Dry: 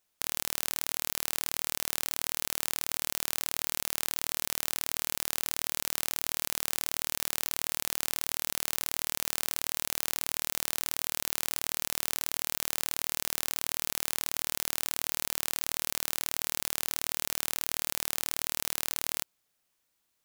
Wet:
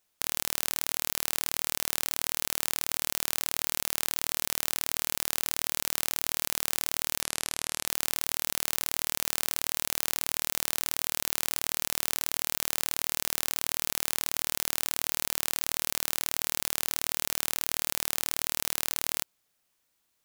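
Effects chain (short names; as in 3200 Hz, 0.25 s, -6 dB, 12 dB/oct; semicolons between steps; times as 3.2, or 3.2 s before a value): 7.22–7.86 steep low-pass 12000 Hz 48 dB/oct; gain +2 dB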